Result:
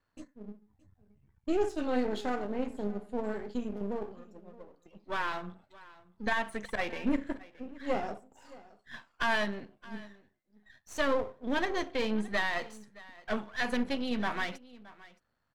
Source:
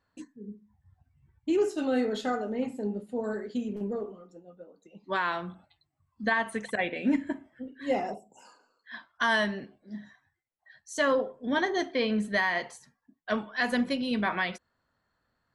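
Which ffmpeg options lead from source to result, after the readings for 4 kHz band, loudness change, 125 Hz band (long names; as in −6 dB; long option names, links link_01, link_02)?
−3.5 dB, −4.0 dB, −3.5 dB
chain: -af "aeval=exprs='if(lt(val(0),0),0.251*val(0),val(0))':channel_layout=same,highshelf=frequency=7400:gain=-5.5,aecho=1:1:620:0.0944"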